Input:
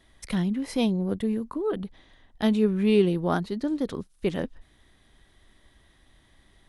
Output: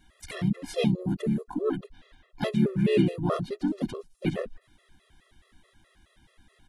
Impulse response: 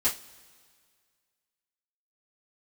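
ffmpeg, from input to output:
-filter_complex "[0:a]asplit=4[link_01][link_02][link_03][link_04];[link_02]asetrate=29433,aresample=44100,atempo=1.49831,volume=-7dB[link_05];[link_03]asetrate=37084,aresample=44100,atempo=1.18921,volume=-5dB[link_06];[link_04]asetrate=58866,aresample=44100,atempo=0.749154,volume=-16dB[link_07];[link_01][link_05][link_06][link_07]amix=inputs=4:normalize=0,afftfilt=real='re*gt(sin(2*PI*4.7*pts/sr)*(1-2*mod(floor(b*sr/1024/350),2)),0)':imag='im*gt(sin(2*PI*4.7*pts/sr)*(1-2*mod(floor(b*sr/1024/350),2)),0)':win_size=1024:overlap=0.75"

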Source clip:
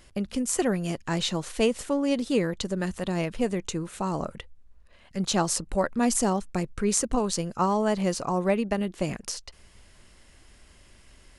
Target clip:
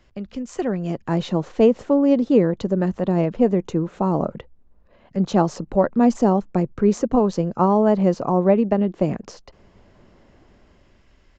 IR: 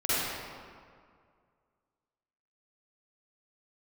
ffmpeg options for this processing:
-filter_complex "[0:a]highshelf=frequency=4100:gain=-11.5,acrossover=split=110|1000[link_01][link_02][link_03];[link_02]dynaudnorm=framelen=140:gausssize=13:maxgain=12.5dB[link_04];[link_01][link_04][link_03]amix=inputs=3:normalize=0,aresample=16000,aresample=44100,volume=-2dB"

